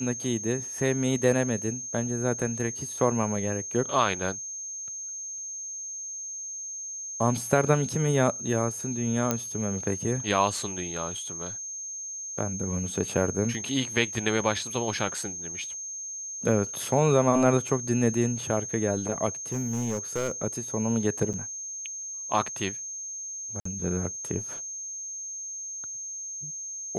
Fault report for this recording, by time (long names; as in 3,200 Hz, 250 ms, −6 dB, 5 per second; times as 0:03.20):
whistle 6,400 Hz −34 dBFS
0:09.31: click −10 dBFS
0:19.52–0:20.32: clipping −24 dBFS
0:21.33–0:21.34: drop-out 7.5 ms
0:23.60–0:23.65: drop-out 54 ms